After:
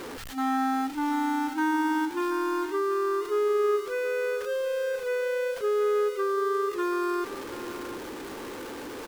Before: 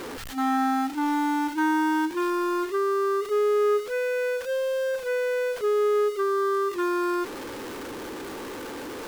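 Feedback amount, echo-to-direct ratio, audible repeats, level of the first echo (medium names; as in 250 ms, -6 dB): 24%, -12.5 dB, 2, -13.0 dB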